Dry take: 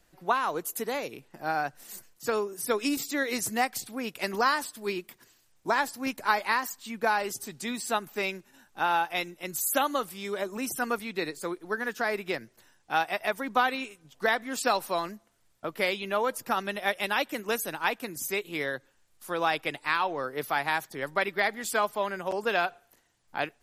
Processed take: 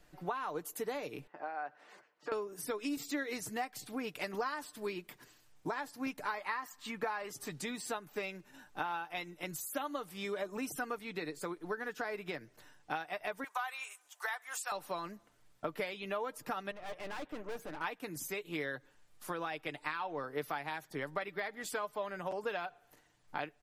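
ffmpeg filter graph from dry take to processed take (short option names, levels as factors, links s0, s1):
-filter_complex "[0:a]asettb=1/sr,asplit=3[s0][s1][s2];[s0]atrim=end=1.274[s3];[s1]atrim=start=1.27:end=2.32,asetpts=PTS-STARTPTS,afade=t=in:d=0.004:c=qsin,afade=t=out:st=1.046:d=0.004:c=qsin,highpass=480,lowpass=2100,acompressor=threshold=0.0112:ratio=4:attack=3.2:release=140:knee=1:detection=peak[s4];[s2]atrim=start=2.316[s5];[s3][s4]acrossfade=d=0.004:c1=hsin:c2=qsin[s6];[s6][s5]acrossfade=d=0.004:c1=qsin:c2=hsin,asettb=1/sr,asplit=3[s7][s8][s9];[s7]atrim=end=6.344[s10];[s8]atrim=start=6.34:end=7.5,asetpts=PTS-STARTPTS,afade=t=in:d=0.004:c=qsin,afade=t=out:st=1.156:d=0.004:c=qsin,equalizer=f=1400:t=o:w=1.3:g=7.5,bandreject=f=1500:w=9.8[s11];[s9]atrim=start=7.496[s12];[s10][s11]acrossfade=d=0.004:c1=hsin:c2=qsin[s13];[s13][s12]acrossfade=d=0.004:c1=qsin:c2=hsin,asettb=1/sr,asplit=3[s14][s15][s16];[s14]atrim=end=13.444[s17];[s15]atrim=start=13.44:end=14.72,asetpts=PTS-STARTPTS,afade=t=in:d=0.004:c=qsin,afade=t=out:st=1.276:d=0.004:c=qsin,highpass=f=790:w=0.5412,highpass=f=790:w=1.3066,highshelf=f=5800:t=q:w=1.5:g=7.5[s18];[s16]atrim=start=14.716[s19];[s17][s18]acrossfade=d=0.004:c1=hsin:c2=qsin[s20];[s20][s19]acrossfade=d=0.004:c1=qsin:c2=hsin,asettb=1/sr,asplit=3[s21][s22][s23];[s21]atrim=end=16.714[s24];[s22]atrim=start=16.71:end=17.81,asetpts=PTS-STARTPTS,afade=t=in:d=0.004:c=qsin,afade=t=out:st=1.096:d=0.004:c=qsin,lowpass=f=1300:p=1,aeval=exprs='(tanh(126*val(0)+0.75)-tanh(0.75))/126':c=same[s25];[s23]atrim=start=17.806[s26];[s24][s25]acrossfade=d=0.004:c1=hsin:c2=qsin[s27];[s27][s26]acrossfade=d=0.004:c1=qsin:c2=hsin,acompressor=threshold=0.0141:ratio=6,highshelf=f=4400:g=-7,aecho=1:1:6.7:0.39,volume=1.19"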